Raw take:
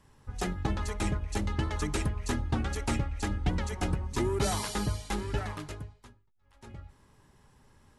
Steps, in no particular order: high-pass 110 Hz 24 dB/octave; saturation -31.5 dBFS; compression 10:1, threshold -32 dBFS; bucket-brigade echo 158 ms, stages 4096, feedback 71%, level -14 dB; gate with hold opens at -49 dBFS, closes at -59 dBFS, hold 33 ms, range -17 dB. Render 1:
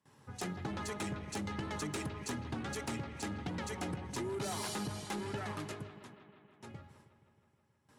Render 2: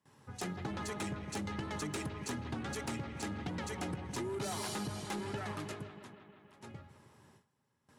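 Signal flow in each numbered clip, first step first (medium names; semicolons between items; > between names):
gate with hold > high-pass > compression > bucket-brigade echo > saturation; bucket-brigade echo > gate with hold > high-pass > compression > saturation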